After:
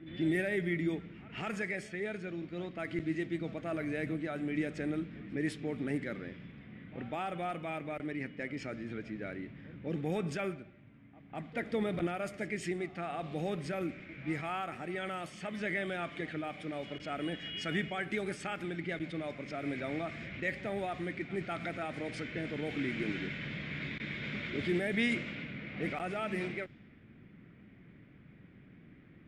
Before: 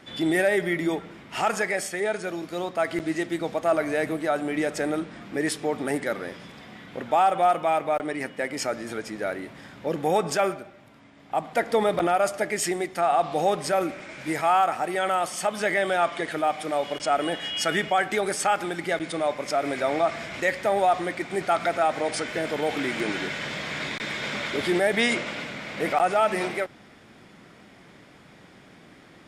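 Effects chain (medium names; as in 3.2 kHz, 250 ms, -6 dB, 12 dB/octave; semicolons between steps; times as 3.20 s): pre-echo 200 ms -19.5 dB; level-controlled noise filter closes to 2.1 kHz, open at -19.5 dBFS; FFT filter 130 Hz 0 dB, 280 Hz -5 dB, 860 Hz -21 dB, 2.3 kHz -7 dB, 5.5 kHz -18 dB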